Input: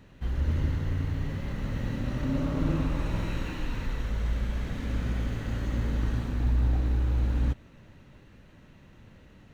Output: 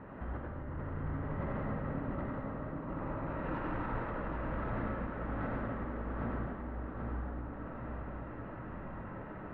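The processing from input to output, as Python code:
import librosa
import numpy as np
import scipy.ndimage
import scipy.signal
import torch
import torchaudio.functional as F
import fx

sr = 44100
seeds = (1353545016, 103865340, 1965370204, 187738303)

p1 = scipy.signal.sosfilt(scipy.signal.butter(4, 1300.0, 'lowpass', fs=sr, output='sos'), x)
p2 = fx.tilt_eq(p1, sr, slope=3.5)
p3 = fx.over_compress(p2, sr, threshold_db=-47.0, ratio=-1.0)
p4 = 10.0 ** (-36.0 / 20.0) * np.tanh(p3 / 10.0 ** (-36.0 / 20.0))
p5 = p4 + fx.echo_feedback(p4, sr, ms=782, feedback_pct=50, wet_db=-5, dry=0)
p6 = fx.rev_freeverb(p5, sr, rt60_s=0.92, hf_ratio=0.95, predelay_ms=40, drr_db=-1.0)
y = F.gain(torch.from_numpy(p6), 5.5).numpy()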